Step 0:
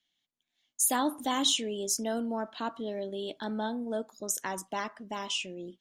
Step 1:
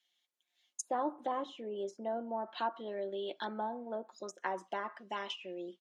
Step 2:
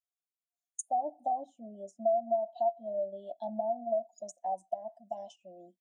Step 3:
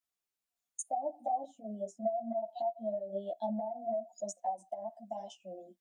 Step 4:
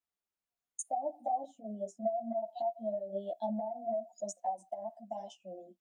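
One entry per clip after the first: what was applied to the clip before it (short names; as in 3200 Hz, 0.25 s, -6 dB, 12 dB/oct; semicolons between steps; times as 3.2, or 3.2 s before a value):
treble ducked by the level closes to 800 Hz, closed at -28 dBFS; HPF 420 Hz 12 dB/oct; comb 5.6 ms, depth 53%
EQ curve 240 Hz 0 dB, 440 Hz -18 dB, 690 Hz +12 dB, 1200 Hz -29 dB, 3800 Hz -9 dB, 8500 Hz +14 dB; compressor 5:1, threshold -34 dBFS, peak gain reduction 9.5 dB; spectral expander 1.5:1
in parallel at +2 dB: limiter -31 dBFS, peak gain reduction 11 dB; on the sum: compressor, threshold -28 dBFS, peak gain reduction 7.5 dB; ensemble effect
mismatched tape noise reduction decoder only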